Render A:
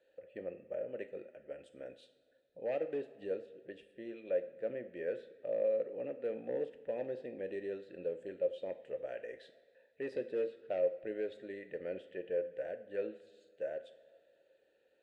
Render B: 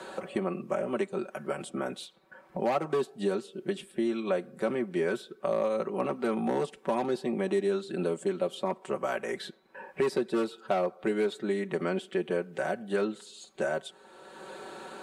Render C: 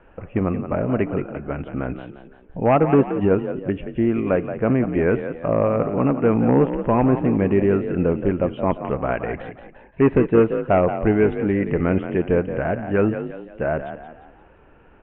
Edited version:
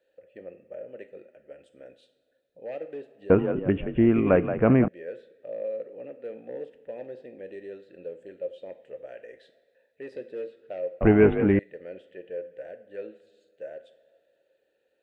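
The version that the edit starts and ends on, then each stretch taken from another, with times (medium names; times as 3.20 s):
A
3.30–4.88 s: from C
11.01–11.59 s: from C
not used: B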